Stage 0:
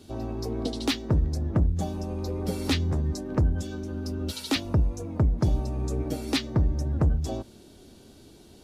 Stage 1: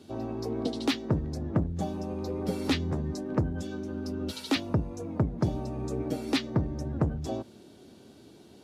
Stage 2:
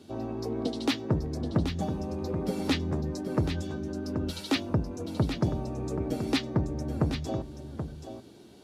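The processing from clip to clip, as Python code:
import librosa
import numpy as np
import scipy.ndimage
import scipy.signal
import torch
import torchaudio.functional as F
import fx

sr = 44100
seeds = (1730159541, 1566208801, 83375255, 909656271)

y1 = scipy.signal.sosfilt(scipy.signal.butter(2, 120.0, 'highpass', fs=sr, output='sos'), x)
y1 = fx.high_shelf(y1, sr, hz=4400.0, db=-7.5)
y2 = y1 + 10.0 ** (-8.5 / 20.0) * np.pad(y1, (int(780 * sr / 1000.0), 0))[:len(y1)]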